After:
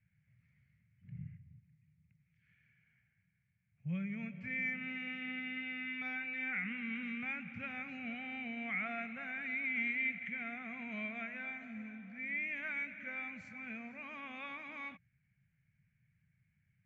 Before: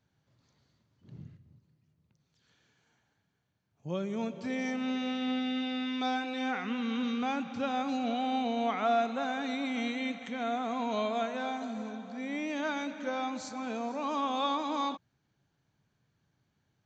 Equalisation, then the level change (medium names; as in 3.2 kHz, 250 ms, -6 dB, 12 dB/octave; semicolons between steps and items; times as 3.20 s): FFT filter 180 Hz 0 dB, 320 Hz -26 dB, 660 Hz -20 dB, 950 Hz -26 dB, 2.2 kHz +7 dB, 3.8 kHz -27 dB; +1.5 dB